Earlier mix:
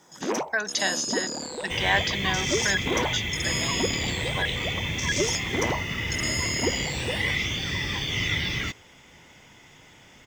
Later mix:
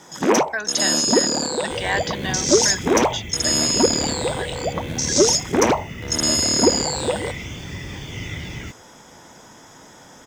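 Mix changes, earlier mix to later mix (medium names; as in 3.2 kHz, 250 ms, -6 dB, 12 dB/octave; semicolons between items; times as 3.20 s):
first sound +11.0 dB; second sound: add ten-band graphic EQ 1 kHz -8 dB, 2 kHz -4 dB, 4 kHz -10 dB, 16 kHz -5 dB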